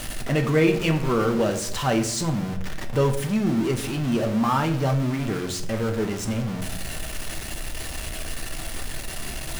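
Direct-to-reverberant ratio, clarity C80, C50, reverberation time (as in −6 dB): 3.5 dB, 13.5 dB, 10.5 dB, 0.75 s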